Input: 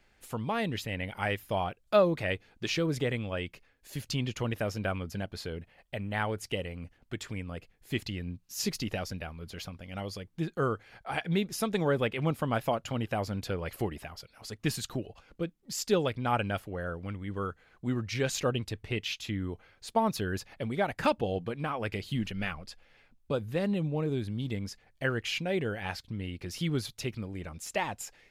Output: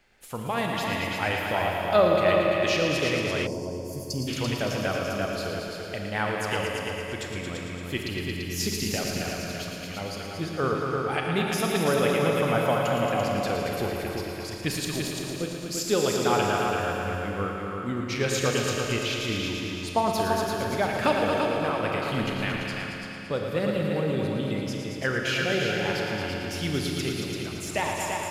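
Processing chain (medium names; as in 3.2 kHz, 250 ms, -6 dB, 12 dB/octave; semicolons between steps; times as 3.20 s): bass shelf 250 Hz -5 dB; multi-head delay 113 ms, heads all three, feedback 50%, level -8 dB; Schroeder reverb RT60 2.7 s, combs from 30 ms, DRR 3 dB; time-frequency box 3.46–4.28 s, 1.1–4.4 kHz -21 dB; trim +3 dB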